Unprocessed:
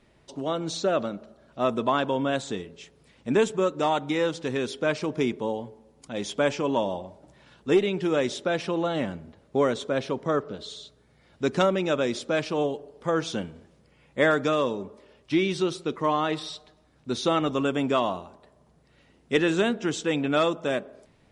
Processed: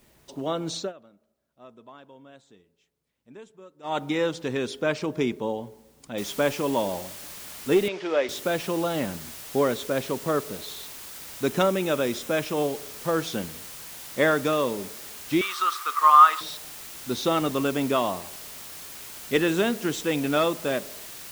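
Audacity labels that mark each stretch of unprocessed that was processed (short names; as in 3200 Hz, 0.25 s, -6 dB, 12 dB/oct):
0.780000	3.980000	dip -23.5 dB, fades 0.15 s
6.180000	6.180000	noise floor step -64 dB -41 dB
7.880000	8.290000	speaker cabinet 440–5200 Hz, peaks and dips at 600 Hz +5 dB, 2100 Hz +3 dB, 4000 Hz -4 dB
11.490000	12.600000	notch 4500 Hz
15.410000	16.410000	resonant high-pass 1200 Hz, resonance Q 15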